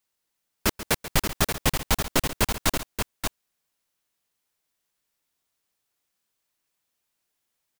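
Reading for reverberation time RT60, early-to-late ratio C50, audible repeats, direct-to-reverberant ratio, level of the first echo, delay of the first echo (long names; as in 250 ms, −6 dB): no reverb audible, no reverb audible, 2, no reverb audible, −14.0 dB, 136 ms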